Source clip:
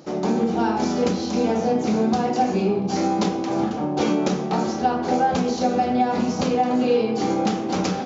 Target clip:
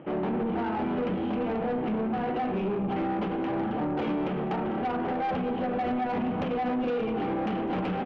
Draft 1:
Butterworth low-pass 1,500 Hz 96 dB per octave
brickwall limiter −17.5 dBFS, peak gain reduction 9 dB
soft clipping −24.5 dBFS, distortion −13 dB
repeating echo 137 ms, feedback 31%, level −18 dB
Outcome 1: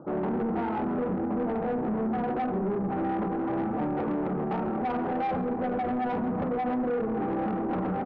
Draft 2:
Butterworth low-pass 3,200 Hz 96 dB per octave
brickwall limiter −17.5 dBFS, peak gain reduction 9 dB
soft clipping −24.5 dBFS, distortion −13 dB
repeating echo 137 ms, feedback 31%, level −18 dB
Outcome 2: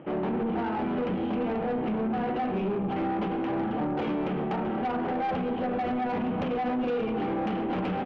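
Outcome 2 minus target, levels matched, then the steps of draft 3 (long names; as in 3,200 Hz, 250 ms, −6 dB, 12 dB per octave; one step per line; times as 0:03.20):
echo 67 ms early
Butterworth low-pass 3,200 Hz 96 dB per octave
brickwall limiter −17.5 dBFS, peak gain reduction 9 dB
soft clipping −24.5 dBFS, distortion −13 dB
repeating echo 204 ms, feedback 31%, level −18 dB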